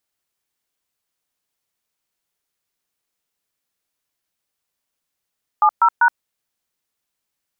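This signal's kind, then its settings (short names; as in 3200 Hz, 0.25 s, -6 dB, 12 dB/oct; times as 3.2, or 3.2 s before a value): DTMF "70#", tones 71 ms, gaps 0.125 s, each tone -12.5 dBFS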